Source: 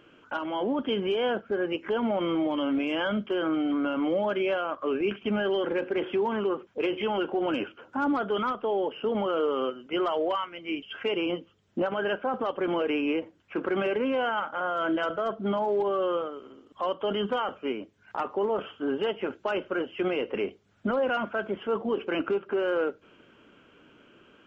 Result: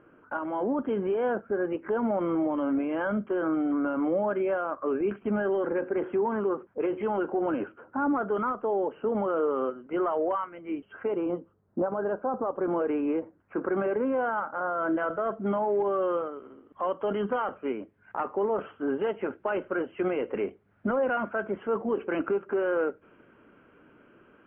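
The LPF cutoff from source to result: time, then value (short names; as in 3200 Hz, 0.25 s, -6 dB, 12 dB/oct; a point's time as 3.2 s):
LPF 24 dB/oct
10.55 s 1700 Hz
11.88 s 1200 Hz
12.45 s 1200 Hz
12.88 s 1600 Hz
14.8 s 1600 Hz
15.36 s 2100 Hz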